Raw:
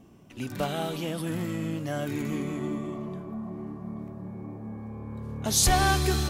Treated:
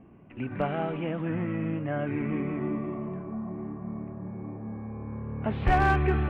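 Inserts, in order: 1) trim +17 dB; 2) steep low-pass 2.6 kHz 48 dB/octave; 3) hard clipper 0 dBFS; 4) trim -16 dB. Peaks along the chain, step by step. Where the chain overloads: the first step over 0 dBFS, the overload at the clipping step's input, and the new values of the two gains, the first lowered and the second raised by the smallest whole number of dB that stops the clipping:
+5.0 dBFS, +4.5 dBFS, 0.0 dBFS, -16.0 dBFS; step 1, 4.5 dB; step 1 +12 dB, step 4 -11 dB

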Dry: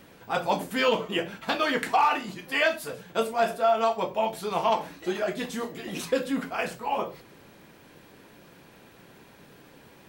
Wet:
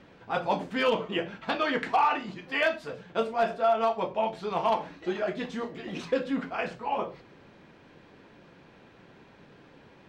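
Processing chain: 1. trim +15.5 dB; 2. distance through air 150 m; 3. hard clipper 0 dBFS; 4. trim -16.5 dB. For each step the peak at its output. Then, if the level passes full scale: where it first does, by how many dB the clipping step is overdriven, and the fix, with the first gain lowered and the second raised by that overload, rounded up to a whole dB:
+4.5 dBFS, +4.0 dBFS, 0.0 dBFS, -16.5 dBFS; step 1, 4.0 dB; step 1 +11.5 dB, step 4 -12.5 dB

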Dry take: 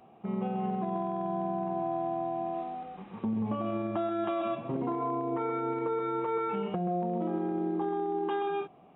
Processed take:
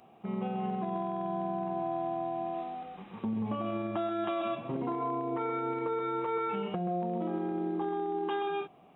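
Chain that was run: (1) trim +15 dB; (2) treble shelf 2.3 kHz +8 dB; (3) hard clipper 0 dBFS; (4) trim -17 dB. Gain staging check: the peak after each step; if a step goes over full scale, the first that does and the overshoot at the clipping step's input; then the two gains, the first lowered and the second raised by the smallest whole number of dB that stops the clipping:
-7.0 dBFS, -5.0 dBFS, -5.0 dBFS, -22.0 dBFS; nothing clips

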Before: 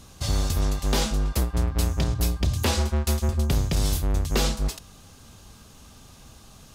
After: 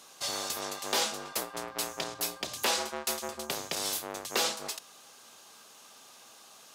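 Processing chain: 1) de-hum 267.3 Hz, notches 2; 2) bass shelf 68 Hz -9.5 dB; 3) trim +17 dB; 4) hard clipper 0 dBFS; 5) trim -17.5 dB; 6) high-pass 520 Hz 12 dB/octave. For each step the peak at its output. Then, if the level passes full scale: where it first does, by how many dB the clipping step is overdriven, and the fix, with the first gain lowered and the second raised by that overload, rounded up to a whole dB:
-13.0 dBFS, -12.5 dBFS, +4.5 dBFS, 0.0 dBFS, -17.5 dBFS, -15.0 dBFS; step 3, 4.5 dB; step 3 +12 dB, step 5 -12.5 dB

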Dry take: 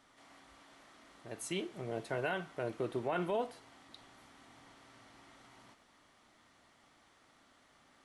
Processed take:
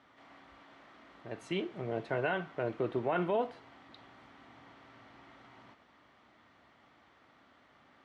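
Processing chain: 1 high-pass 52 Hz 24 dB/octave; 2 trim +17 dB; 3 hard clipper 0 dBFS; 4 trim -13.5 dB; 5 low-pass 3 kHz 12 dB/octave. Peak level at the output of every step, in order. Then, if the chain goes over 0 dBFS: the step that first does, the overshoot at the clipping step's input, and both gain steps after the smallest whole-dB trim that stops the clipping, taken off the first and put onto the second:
-22.5 dBFS, -5.5 dBFS, -5.5 dBFS, -19.0 dBFS, -19.5 dBFS; nothing clips

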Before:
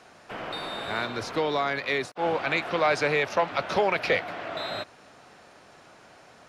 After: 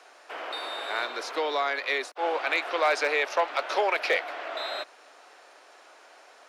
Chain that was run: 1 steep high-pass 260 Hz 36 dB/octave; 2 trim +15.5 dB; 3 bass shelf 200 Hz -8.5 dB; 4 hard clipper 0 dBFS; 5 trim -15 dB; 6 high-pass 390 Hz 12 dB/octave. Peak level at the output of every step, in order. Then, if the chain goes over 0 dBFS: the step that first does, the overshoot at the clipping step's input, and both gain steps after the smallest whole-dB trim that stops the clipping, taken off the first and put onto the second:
-11.5 dBFS, +4.0 dBFS, +3.5 dBFS, 0.0 dBFS, -15.0 dBFS, -12.0 dBFS; step 2, 3.5 dB; step 2 +11.5 dB, step 5 -11 dB

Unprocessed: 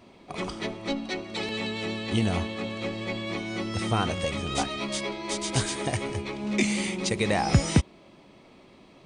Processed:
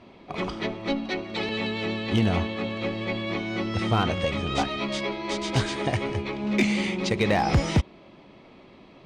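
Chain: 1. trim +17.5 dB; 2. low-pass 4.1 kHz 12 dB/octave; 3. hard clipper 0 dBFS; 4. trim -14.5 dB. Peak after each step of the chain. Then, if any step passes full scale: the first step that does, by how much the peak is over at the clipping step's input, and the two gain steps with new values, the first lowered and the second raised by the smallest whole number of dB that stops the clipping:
+10.0 dBFS, +9.5 dBFS, 0.0 dBFS, -14.5 dBFS; step 1, 9.5 dB; step 1 +7.5 dB, step 4 -4.5 dB

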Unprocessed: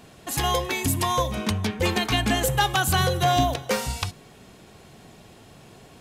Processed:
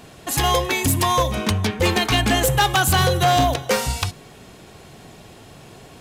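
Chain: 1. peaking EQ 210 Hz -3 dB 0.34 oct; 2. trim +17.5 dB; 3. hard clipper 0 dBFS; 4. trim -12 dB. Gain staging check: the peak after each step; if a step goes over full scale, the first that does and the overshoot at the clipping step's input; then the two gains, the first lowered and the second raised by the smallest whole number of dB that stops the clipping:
-8.5 dBFS, +9.0 dBFS, 0.0 dBFS, -12.0 dBFS; step 2, 9.0 dB; step 2 +8.5 dB, step 4 -3 dB

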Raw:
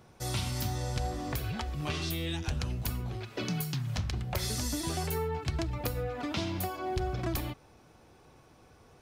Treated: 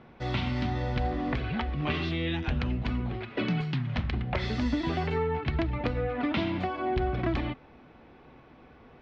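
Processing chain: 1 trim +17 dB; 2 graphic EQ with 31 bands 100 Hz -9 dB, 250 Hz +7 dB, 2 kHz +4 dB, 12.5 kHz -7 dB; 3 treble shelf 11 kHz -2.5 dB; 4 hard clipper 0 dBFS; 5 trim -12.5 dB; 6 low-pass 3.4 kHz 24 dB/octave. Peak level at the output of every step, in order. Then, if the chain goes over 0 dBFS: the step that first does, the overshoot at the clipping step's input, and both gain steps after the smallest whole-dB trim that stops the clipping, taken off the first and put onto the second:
-3.0 dBFS, -2.5 dBFS, -2.5 dBFS, -2.5 dBFS, -15.0 dBFS, -15.5 dBFS; nothing clips

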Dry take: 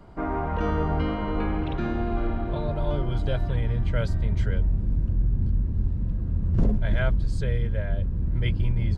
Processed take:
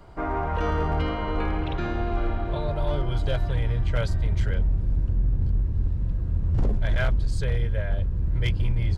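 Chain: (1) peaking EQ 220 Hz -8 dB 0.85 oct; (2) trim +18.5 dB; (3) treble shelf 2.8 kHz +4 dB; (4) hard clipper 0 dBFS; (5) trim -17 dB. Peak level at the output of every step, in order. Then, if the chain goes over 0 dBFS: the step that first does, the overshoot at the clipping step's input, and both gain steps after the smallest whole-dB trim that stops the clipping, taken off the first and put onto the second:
-12.0 dBFS, +6.5 dBFS, +6.5 dBFS, 0.0 dBFS, -17.0 dBFS; step 2, 6.5 dB; step 2 +11.5 dB, step 5 -10 dB

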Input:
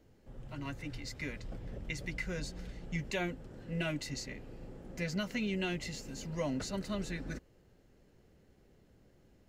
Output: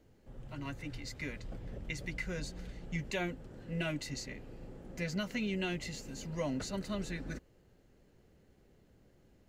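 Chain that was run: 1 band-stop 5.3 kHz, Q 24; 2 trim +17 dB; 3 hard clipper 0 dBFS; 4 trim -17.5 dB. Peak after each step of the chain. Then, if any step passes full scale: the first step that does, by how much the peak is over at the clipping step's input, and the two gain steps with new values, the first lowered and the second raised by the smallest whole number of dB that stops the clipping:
-22.0 dBFS, -5.0 dBFS, -5.0 dBFS, -22.5 dBFS; nothing clips

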